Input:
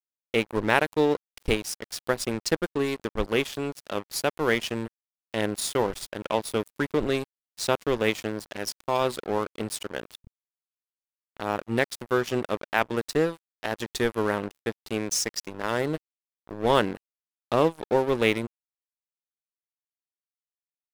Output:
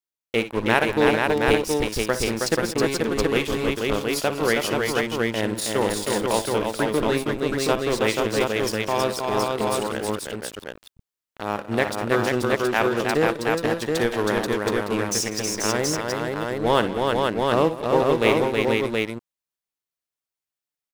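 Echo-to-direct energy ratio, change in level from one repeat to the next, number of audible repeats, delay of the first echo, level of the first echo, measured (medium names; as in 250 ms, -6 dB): 1.5 dB, no regular repeats, 5, 57 ms, -14.0 dB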